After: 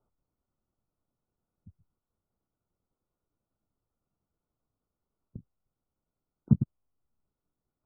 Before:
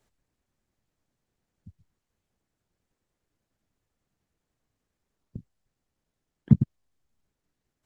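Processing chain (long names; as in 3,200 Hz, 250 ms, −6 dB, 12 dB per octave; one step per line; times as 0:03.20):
linear-phase brick-wall low-pass 1,500 Hz
level −4.5 dB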